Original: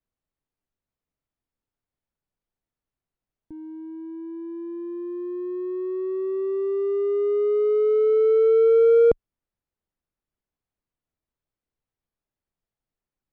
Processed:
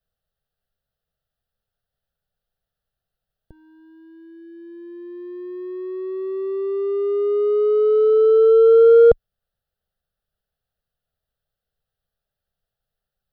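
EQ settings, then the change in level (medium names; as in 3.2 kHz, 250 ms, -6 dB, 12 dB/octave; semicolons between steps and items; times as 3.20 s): static phaser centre 1.5 kHz, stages 8; +8.0 dB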